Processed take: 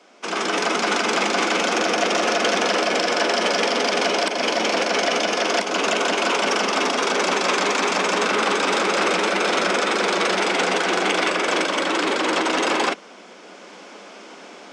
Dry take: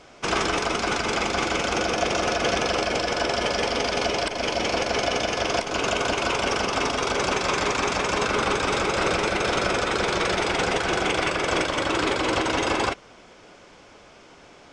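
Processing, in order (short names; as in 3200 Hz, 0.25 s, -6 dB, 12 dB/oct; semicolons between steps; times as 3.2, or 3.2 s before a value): steep high-pass 180 Hz 96 dB/oct; AGC gain up to 11.5 dB; core saturation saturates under 1900 Hz; gain -3 dB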